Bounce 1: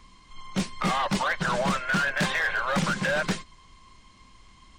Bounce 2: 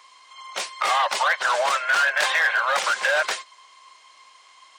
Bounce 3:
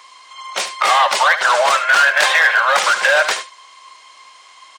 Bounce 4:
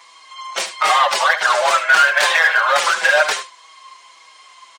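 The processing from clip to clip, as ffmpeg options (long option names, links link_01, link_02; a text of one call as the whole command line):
ffmpeg -i in.wav -af "highpass=frequency=570:width=0.5412,highpass=frequency=570:width=1.3066,volume=6dB" out.wav
ffmpeg -i in.wav -af "aecho=1:1:74:0.251,volume=7.5dB" out.wav
ffmpeg -i in.wav -filter_complex "[0:a]asplit=2[link_01][link_02];[link_02]adelay=5.5,afreqshift=-1.7[link_03];[link_01][link_03]amix=inputs=2:normalize=1,volume=2dB" out.wav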